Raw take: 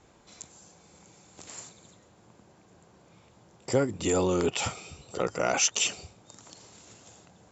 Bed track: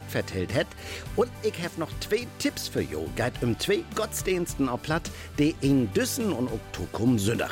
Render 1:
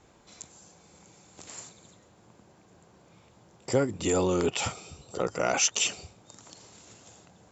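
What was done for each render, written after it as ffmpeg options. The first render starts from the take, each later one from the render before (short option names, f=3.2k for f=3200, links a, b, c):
-filter_complex "[0:a]asettb=1/sr,asplit=3[a][b][c];[a]atrim=end=4.724[d];[b]atrim=start=4.72:end=5.32,asetpts=PTS-STARTPTS,afade=t=in:d=0.004:c=qsin,afade=t=out:st=0.596:d=0.004:c=qsin,equalizer=f=2.3k:w=1.5:g=-5[e];[c]atrim=start=5.316[f];[d][e]acrossfade=d=0.004:c1=hsin:c2=qsin[g];[g][f]acrossfade=d=0.004:c1=qsin:c2=hsin"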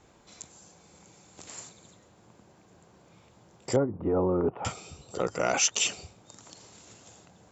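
-filter_complex "[0:a]asettb=1/sr,asplit=3[a][b][c];[a]atrim=end=3.764[d];[b]atrim=start=3.76:end=4.65,asetpts=PTS-STARTPTS,afade=t=in:d=0.004:c=qsin,afade=t=out:st=0.886:d=0.004:c=qsin,lowpass=f=1.2k:w=0.5412,lowpass=f=1.2k:w=1.3066[e];[c]atrim=start=4.646[f];[d][e]acrossfade=d=0.004:c1=hsin:c2=qsin[g];[g][f]acrossfade=d=0.004:c1=qsin:c2=hsin"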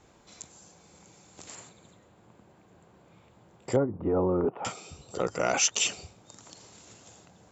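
-filter_complex "[0:a]asettb=1/sr,asplit=3[a][b][c];[a]atrim=end=1.554[d];[b]atrim=start=1.55:end=3.88,asetpts=PTS-STARTPTS,afade=t=in:d=0.004:c=qsin,afade=t=out:st=2.326:d=0.004:c=qsin,equalizer=f=5.7k:w=1.5:g=-9.5[e];[c]atrim=start=3.876[f];[d][e]acrossfade=d=0.004:c1=hsin:c2=qsin[g];[g][f]acrossfade=d=0.004:c1=qsin:c2=hsin,asettb=1/sr,asplit=3[h][i][j];[h]atrim=end=4.454[k];[i]atrim=start=4.45:end=4.91,asetpts=PTS-STARTPTS,afade=t=in:d=0.004:c=qsin,afade=t=out:st=0.456:d=0.004:c=qsin,highpass=180[l];[j]atrim=start=4.906[m];[k][l]acrossfade=d=0.004:c1=hsin:c2=qsin[n];[n][m]acrossfade=d=0.004:c1=qsin:c2=hsin"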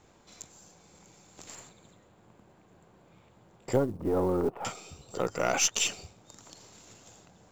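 -af "aeval=exprs='if(lt(val(0),0),0.708*val(0),val(0))':c=same,acrusher=bits=8:mode=log:mix=0:aa=0.000001"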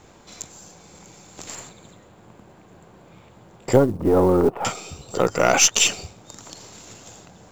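-af "volume=10.5dB,alimiter=limit=-1dB:level=0:latency=1"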